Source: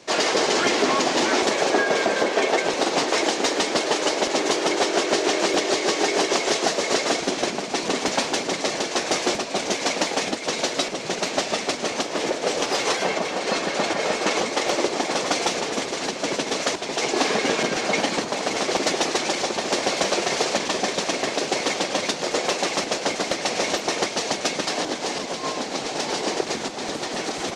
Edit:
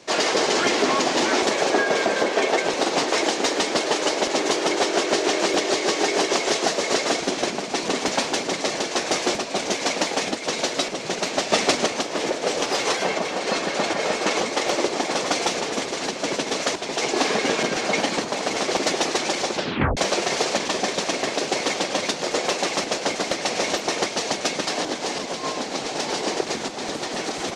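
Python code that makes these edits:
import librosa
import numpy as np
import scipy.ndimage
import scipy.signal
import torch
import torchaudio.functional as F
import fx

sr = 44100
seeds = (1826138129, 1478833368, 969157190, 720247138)

y = fx.edit(x, sr, fx.clip_gain(start_s=11.52, length_s=0.34, db=5.5),
    fx.tape_stop(start_s=19.54, length_s=0.43), tone=tone)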